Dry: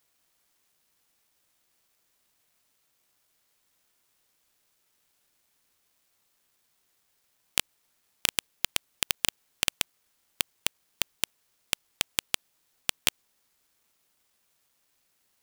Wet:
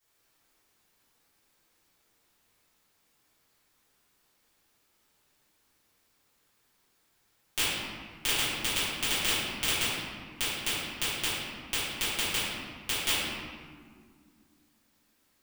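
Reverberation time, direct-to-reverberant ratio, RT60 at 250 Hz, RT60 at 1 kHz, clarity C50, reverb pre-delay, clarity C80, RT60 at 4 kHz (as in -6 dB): 2.0 s, -16.0 dB, 3.3 s, 1.8 s, -3.0 dB, 3 ms, -0.5 dB, 1.1 s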